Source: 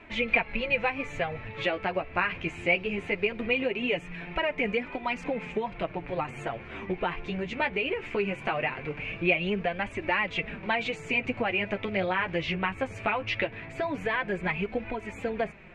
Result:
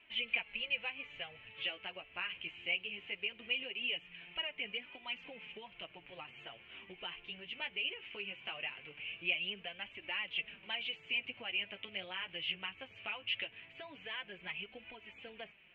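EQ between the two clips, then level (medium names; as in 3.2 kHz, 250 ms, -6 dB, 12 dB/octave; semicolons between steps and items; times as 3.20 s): band-pass filter 3 kHz, Q 10; tilt EQ -4.5 dB/octave; +9.5 dB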